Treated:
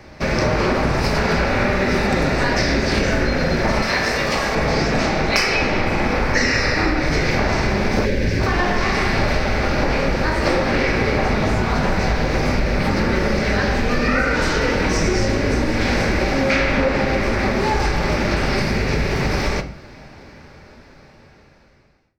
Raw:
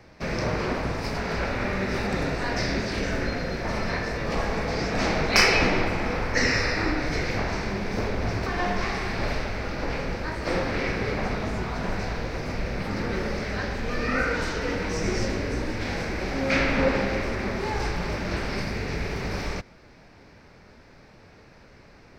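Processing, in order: fade out at the end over 6.25 s; level rider gain up to 10.5 dB; on a send at -7 dB: high-pass 58 Hz 24 dB/octave + reverberation RT60 0.35 s, pre-delay 4 ms; on the sum: compression 6:1, threshold -24 dBFS, peak gain reduction 14 dB; 3.82–4.55 s: tilt EQ +2 dB/octave; 8.05–8.40 s: time-frequency box 620–1500 Hz -13 dB; trim +8.5 dB

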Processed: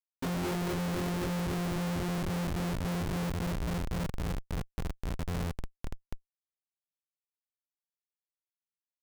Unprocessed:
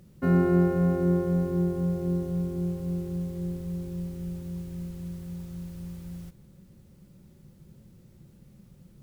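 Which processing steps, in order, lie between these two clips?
5.13–5.59 s: flutter echo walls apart 9.8 m, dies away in 1.3 s; Schmitt trigger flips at -31 dBFS; trim -2.5 dB

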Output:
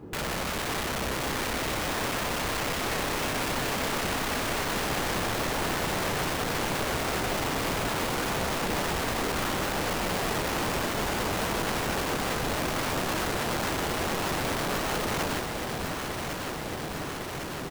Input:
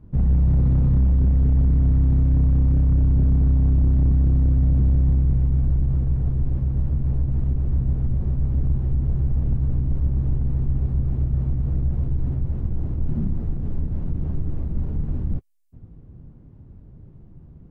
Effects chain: high-pass 280 Hz 12 dB/octave; comb 2.4 ms, depth 43%; in parallel at +1.5 dB: compression 6:1, threshold -43 dBFS, peak gain reduction 14 dB; on the sum: integer overflow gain 35 dB; echo whose repeats swap between lows and highs 552 ms, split 870 Hz, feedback 87%, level -4.5 dB; trim +8.5 dB

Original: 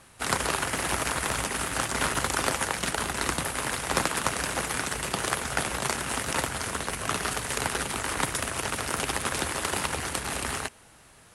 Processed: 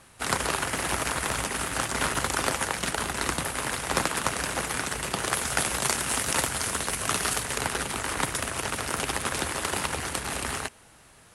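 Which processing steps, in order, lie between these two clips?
5.33–7.43 s: treble shelf 3.8 kHz +6.5 dB

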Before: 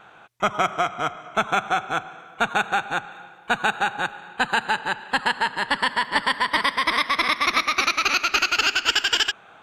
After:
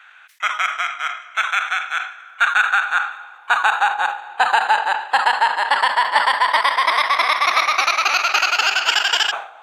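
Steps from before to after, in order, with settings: high-pass sweep 1.8 kHz -> 740 Hz, 2.05–4.48 s; decay stretcher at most 110 dB/s; trim +1.5 dB

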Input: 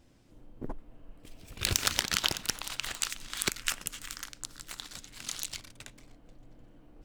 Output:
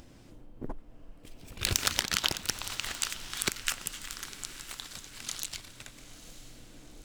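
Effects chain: upward compressor, threshold -44 dBFS; on a send: echo that smears into a reverb 913 ms, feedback 50%, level -14.5 dB

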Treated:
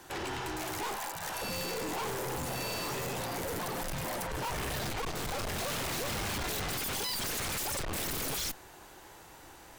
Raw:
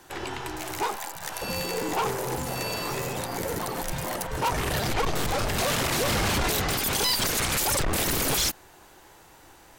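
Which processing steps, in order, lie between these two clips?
Chebyshev shaper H 2 -11 dB, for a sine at -21.5 dBFS; overload inside the chain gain 34 dB

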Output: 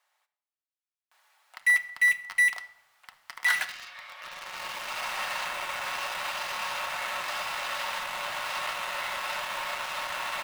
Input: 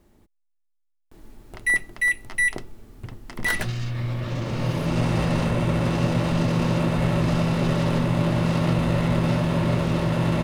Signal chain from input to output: Bessel high-pass 1.3 kHz, order 8; treble shelf 4.9 kHz -9 dB; in parallel at -5 dB: bit crusher 6-bit; on the sum: simulated room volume 2700 m³, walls furnished, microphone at 1 m

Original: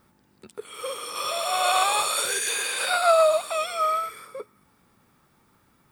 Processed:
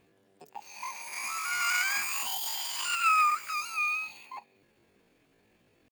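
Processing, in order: pitch shift +11.5 st; bass shelf 410 Hz +7 dB; trim -6.5 dB

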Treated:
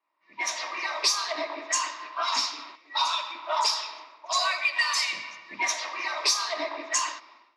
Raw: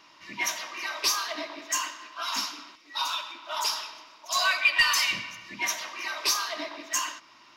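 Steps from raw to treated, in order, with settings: level-controlled noise filter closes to 2.8 kHz, open at -22.5 dBFS; level rider gain up to 14.5 dB; cabinet simulation 440–8800 Hz, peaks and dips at 1.5 kHz -8 dB, 3 kHz -9 dB, 6.2 kHz -4 dB; compression 2.5:1, threshold -28 dBFS, peak gain reduction 11.5 dB; three bands expanded up and down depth 70%

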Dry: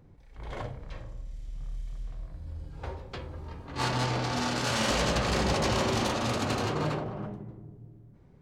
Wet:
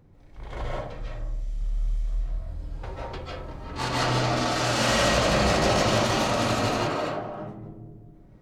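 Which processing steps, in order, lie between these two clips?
6.71–7.43 s: bass shelf 200 Hz -10 dB; algorithmic reverb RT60 0.45 s, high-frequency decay 0.5×, pre-delay 110 ms, DRR -4.5 dB

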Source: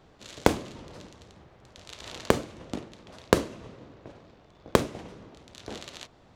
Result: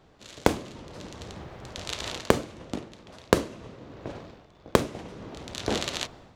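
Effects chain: level rider gain up to 13 dB; trim -1 dB

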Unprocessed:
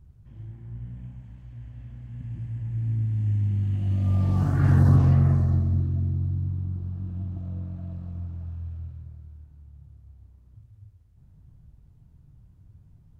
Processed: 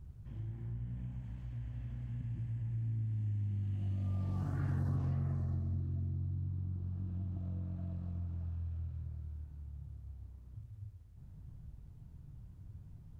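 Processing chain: compression 3:1, threshold -40 dBFS, peak gain reduction 19 dB; trim +1 dB

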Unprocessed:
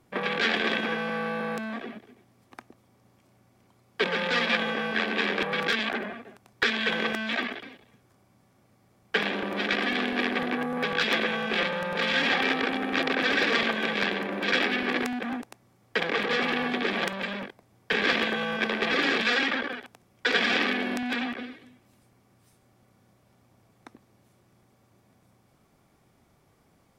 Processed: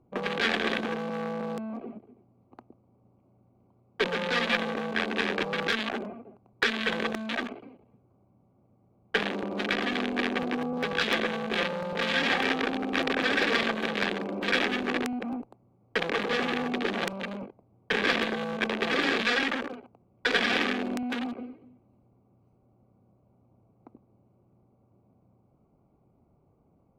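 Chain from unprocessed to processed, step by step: local Wiener filter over 25 samples; Chebyshev shaper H 8 -33 dB, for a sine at -7.5 dBFS; tape noise reduction on one side only decoder only

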